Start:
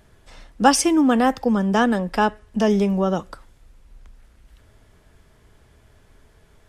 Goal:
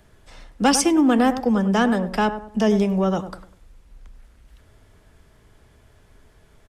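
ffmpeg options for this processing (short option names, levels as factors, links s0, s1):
-filter_complex "[0:a]asplit=2[s0][s1];[s1]adelay=99,lowpass=f=1100:p=1,volume=0.282,asplit=2[s2][s3];[s3]adelay=99,lowpass=f=1100:p=1,volume=0.38,asplit=2[s4][s5];[s5]adelay=99,lowpass=f=1100:p=1,volume=0.38,asplit=2[s6][s7];[s7]adelay=99,lowpass=f=1100:p=1,volume=0.38[s8];[s0][s2][s4][s6][s8]amix=inputs=5:normalize=0,acrossover=split=390|420|1800[s9][s10][s11][s12];[s11]asoftclip=type=tanh:threshold=0.119[s13];[s9][s10][s13][s12]amix=inputs=4:normalize=0"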